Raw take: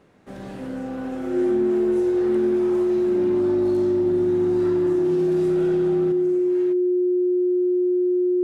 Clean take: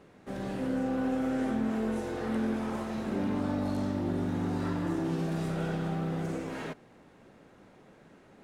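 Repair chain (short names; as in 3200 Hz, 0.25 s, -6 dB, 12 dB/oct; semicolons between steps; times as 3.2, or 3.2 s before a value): notch 360 Hz, Q 30; inverse comb 0.176 s -22.5 dB; gain 0 dB, from 6.12 s +8 dB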